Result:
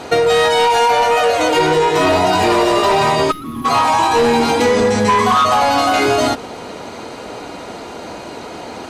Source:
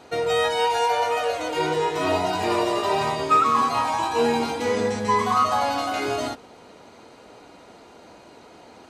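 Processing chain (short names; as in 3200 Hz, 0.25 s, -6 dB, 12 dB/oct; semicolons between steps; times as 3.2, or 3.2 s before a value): in parallel at -4.5 dB: sine folder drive 9 dB, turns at -8 dBFS; on the sum: compressor, threshold -17 dBFS, peak gain reduction 7 dB; spectral gain 3.31–3.65, 370–10000 Hz -22 dB; gain +6 dB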